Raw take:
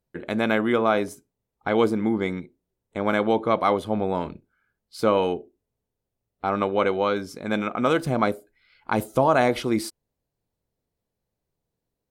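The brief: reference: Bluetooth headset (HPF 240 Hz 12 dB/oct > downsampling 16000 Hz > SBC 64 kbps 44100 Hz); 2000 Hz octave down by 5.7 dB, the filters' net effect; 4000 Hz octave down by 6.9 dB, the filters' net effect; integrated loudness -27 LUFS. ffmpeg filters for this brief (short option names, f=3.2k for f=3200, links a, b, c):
-af "highpass=240,equalizer=f=2k:t=o:g=-6.5,equalizer=f=4k:t=o:g=-6.5,aresample=16000,aresample=44100,volume=-1.5dB" -ar 44100 -c:a sbc -b:a 64k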